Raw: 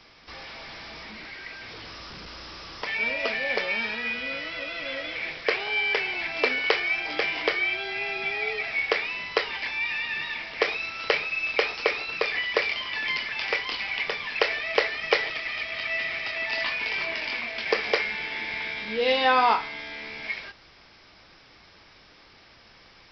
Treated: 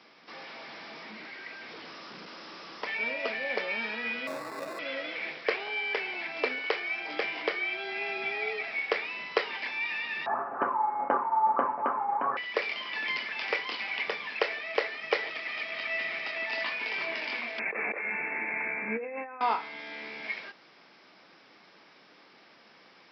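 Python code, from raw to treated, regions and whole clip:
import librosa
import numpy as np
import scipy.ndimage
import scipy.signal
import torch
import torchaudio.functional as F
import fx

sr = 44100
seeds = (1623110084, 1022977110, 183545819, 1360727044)

y = fx.chain(x, sr, fx.air_absorb(metres=210.0),
    fx.sample_hold(seeds[0], rate_hz=3100.0, jitter_pct=0),
    fx.doppler_dist(depth_ms=0.11), at=(4.27, 4.79))
y = fx.chain(y, sr, fx.highpass_res(hz=2700.0, q=3.9),
    fx.comb(ms=6.8, depth=0.47),
    fx.freq_invert(carrier_hz=3500), at=(10.26, 12.37))
y = fx.chain(y, sr, fx.brickwall_lowpass(high_hz=2700.0),
    fx.over_compress(threshold_db=-31.0, ratio=-1.0), at=(17.59, 19.41))
y = scipy.signal.sosfilt(scipy.signal.butter(4, 180.0, 'highpass', fs=sr, output='sos'), y)
y = fx.high_shelf(y, sr, hz=3300.0, db=-8.0)
y = fx.rider(y, sr, range_db=3, speed_s=0.5)
y = y * librosa.db_to_amplitude(-4.0)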